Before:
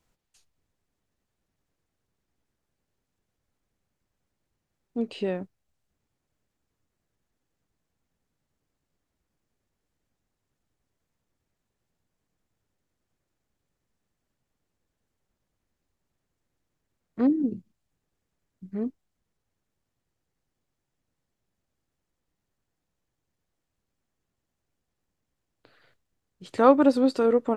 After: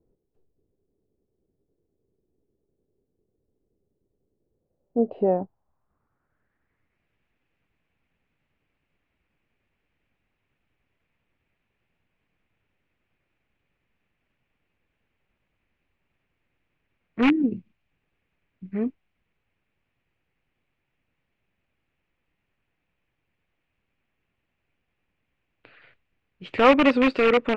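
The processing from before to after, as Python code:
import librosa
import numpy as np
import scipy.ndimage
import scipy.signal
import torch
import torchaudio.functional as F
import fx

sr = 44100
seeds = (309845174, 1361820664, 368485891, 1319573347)

p1 = (np.mod(10.0 ** (16.0 / 20.0) * x + 1.0, 2.0) - 1.0) / 10.0 ** (16.0 / 20.0)
p2 = x + F.gain(torch.from_numpy(p1), -6.5).numpy()
y = fx.filter_sweep_lowpass(p2, sr, from_hz=410.0, to_hz=2500.0, start_s=4.38, end_s=7.07, q=3.8)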